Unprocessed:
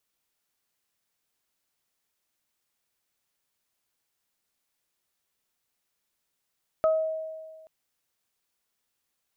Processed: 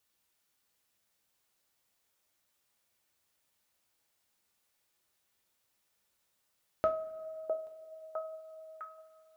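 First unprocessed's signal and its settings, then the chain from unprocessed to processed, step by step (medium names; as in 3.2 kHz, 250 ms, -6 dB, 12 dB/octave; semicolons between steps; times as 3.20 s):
additive tone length 0.83 s, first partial 636 Hz, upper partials -8 dB, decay 1.62 s, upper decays 0.31 s, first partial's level -18 dB
two-slope reverb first 0.28 s, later 2.1 s, from -20 dB, DRR 3 dB; dynamic bell 750 Hz, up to -6 dB, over -41 dBFS, Q 0.98; on a send: repeats whose band climbs or falls 656 ms, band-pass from 550 Hz, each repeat 0.7 oct, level -3 dB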